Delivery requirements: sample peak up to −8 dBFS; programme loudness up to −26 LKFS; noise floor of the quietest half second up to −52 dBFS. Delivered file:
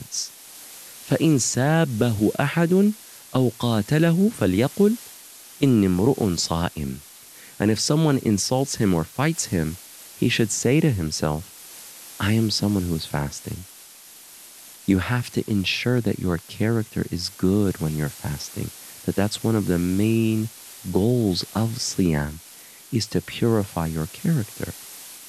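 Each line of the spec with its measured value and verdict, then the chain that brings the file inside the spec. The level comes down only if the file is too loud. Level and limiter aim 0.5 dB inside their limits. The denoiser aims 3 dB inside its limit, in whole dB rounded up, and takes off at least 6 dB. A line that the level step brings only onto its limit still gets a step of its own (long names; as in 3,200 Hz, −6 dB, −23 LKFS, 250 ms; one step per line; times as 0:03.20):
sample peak −5.5 dBFS: out of spec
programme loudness −23.0 LKFS: out of spec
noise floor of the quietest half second −46 dBFS: out of spec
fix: broadband denoise 6 dB, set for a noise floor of −46 dBFS
level −3.5 dB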